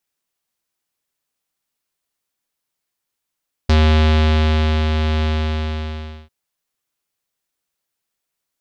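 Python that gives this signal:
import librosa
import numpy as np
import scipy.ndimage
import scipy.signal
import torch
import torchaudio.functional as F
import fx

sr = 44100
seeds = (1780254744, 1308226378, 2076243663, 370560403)

y = fx.sub_voice(sr, note=39, wave='square', cutoff_hz=3600.0, q=2.2, env_oct=0.5, env_s=0.07, attack_ms=6.6, decay_s=1.19, sustain_db=-6, release_s=1.06, note_s=1.54, slope=12)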